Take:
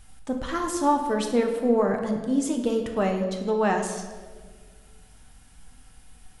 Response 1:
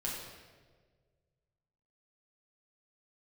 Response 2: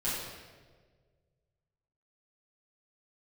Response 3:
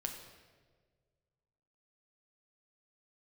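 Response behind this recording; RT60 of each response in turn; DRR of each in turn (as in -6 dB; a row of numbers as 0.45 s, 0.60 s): 3; 1.6 s, 1.6 s, 1.6 s; -4.5 dB, -10.5 dB, 3.0 dB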